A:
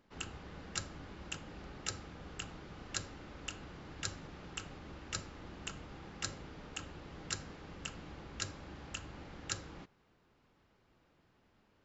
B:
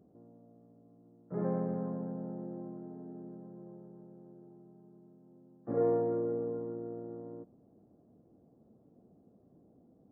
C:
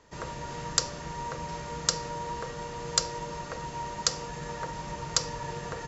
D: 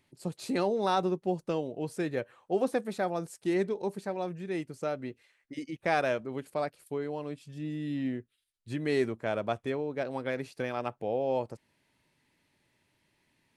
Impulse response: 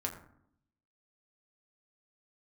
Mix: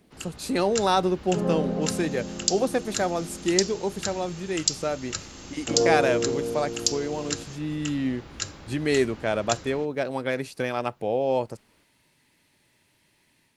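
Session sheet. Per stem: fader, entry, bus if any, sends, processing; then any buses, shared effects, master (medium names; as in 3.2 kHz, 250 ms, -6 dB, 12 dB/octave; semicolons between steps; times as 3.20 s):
0.0 dB, 0.00 s, no send, none
+2.0 dB, 0.00 s, no send, none
-6.0 dB, 1.70 s, no send, steep high-pass 2.5 kHz
+1.0 dB, 0.00 s, no send, none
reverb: none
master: treble shelf 3.9 kHz +7 dB; level rider gain up to 4.5 dB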